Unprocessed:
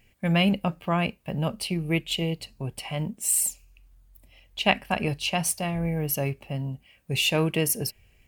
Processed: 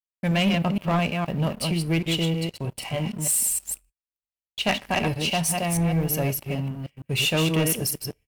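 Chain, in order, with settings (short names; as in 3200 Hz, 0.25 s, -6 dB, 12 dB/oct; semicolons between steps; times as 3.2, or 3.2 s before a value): reverse delay 0.156 s, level -4.5 dB; two-slope reverb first 0.31 s, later 1.7 s, from -26 dB, DRR 15 dB; sample leveller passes 3; gate -39 dBFS, range -41 dB; gain -9 dB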